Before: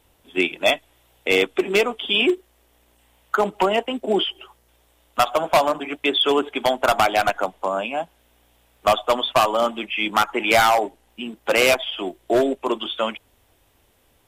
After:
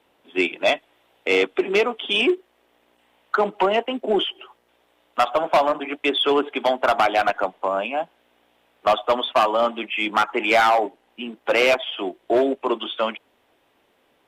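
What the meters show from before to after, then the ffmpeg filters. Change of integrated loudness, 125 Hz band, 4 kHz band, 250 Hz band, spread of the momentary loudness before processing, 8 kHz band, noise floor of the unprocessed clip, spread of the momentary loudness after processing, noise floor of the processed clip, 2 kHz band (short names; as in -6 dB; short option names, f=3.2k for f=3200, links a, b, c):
-0.5 dB, -6.0 dB, -2.5 dB, -0.5 dB, 11 LU, n/a, -61 dBFS, 10 LU, -64 dBFS, -1.0 dB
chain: -filter_complex "[0:a]acrossover=split=180 3800:gain=0.0794 1 0.2[a][b][c];[a][b][c]amix=inputs=3:normalize=0,acontrast=89,volume=-6dB"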